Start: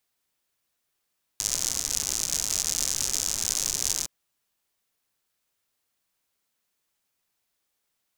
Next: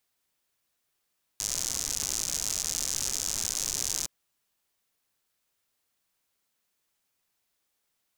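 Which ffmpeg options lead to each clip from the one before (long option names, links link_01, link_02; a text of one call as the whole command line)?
ffmpeg -i in.wav -af "alimiter=limit=-10.5dB:level=0:latency=1:release=27" out.wav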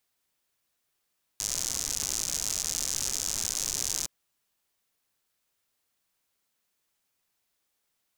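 ffmpeg -i in.wav -af anull out.wav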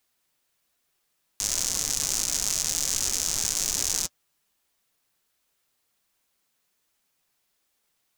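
ffmpeg -i in.wav -af "flanger=delay=2.7:depth=5.1:regen=-48:speed=1.3:shape=triangular,acrusher=bits=3:mode=log:mix=0:aa=0.000001,volume=8dB" out.wav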